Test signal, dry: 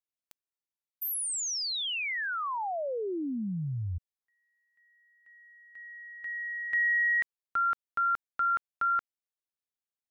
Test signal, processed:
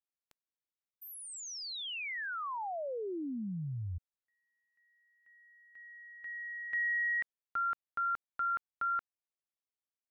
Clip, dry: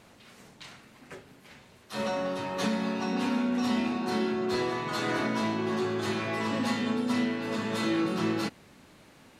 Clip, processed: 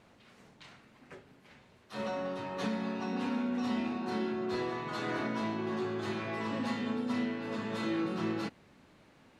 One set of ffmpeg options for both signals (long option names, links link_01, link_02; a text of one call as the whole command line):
ffmpeg -i in.wav -af "lowpass=frequency=3500:poles=1,volume=-5dB" out.wav